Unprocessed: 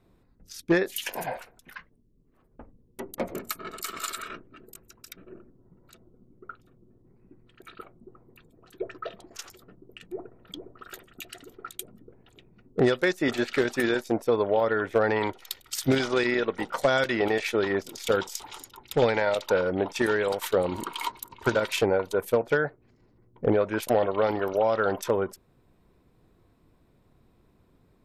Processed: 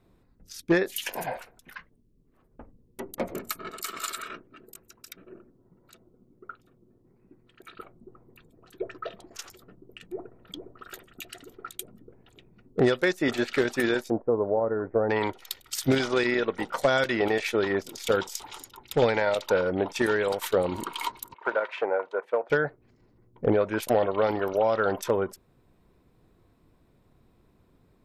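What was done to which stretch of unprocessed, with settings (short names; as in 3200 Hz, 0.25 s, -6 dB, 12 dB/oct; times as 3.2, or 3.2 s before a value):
3.69–7.75 low shelf 130 Hz -7.5 dB
14.1–15.1 Gaussian blur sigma 7.8 samples
21.34–22.5 Butterworth band-pass 990 Hz, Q 0.66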